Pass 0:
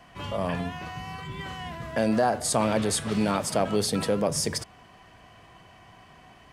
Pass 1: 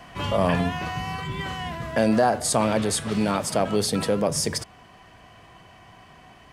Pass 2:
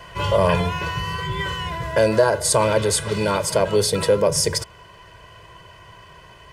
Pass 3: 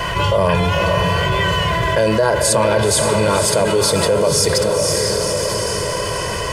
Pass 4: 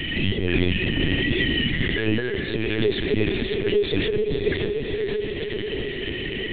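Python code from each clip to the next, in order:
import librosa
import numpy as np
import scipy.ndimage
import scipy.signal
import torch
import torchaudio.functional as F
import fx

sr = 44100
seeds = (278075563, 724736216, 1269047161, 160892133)

y1 = fx.rider(x, sr, range_db=4, speed_s=2.0)
y1 = y1 * 10.0 ** (3.5 / 20.0)
y2 = y1 + 0.92 * np.pad(y1, (int(2.0 * sr / 1000.0), 0))[:len(y1)]
y2 = y2 * 10.0 ** (2.0 / 20.0)
y3 = fx.echo_diffused(y2, sr, ms=509, feedback_pct=41, wet_db=-6)
y3 = fx.env_flatten(y3, sr, amount_pct=70)
y3 = y3 * 10.0 ** (-1.5 / 20.0)
y4 = fx.brickwall_bandstop(y3, sr, low_hz=480.0, high_hz=1600.0)
y4 = fx.lpc_vocoder(y4, sr, seeds[0], excitation='pitch_kept', order=10)
y4 = y4 * 10.0 ** (-3.0 / 20.0)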